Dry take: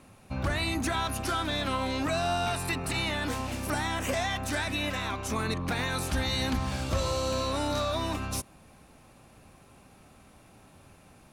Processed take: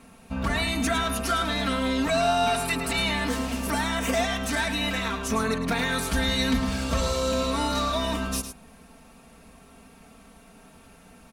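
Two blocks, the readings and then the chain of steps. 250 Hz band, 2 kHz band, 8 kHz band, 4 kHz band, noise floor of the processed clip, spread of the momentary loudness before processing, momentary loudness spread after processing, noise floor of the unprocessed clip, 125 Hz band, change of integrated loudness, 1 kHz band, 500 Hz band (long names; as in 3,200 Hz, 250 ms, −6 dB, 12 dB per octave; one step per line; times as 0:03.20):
+6.0 dB, +4.5 dB, +4.5 dB, +4.5 dB, −52 dBFS, 4 LU, 5 LU, −56 dBFS, +0.5 dB, +4.5 dB, +4.5 dB, +4.5 dB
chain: comb filter 4.4 ms, depth 90%
on a send: single-tap delay 107 ms −9.5 dB
on the sum: level +1.5 dB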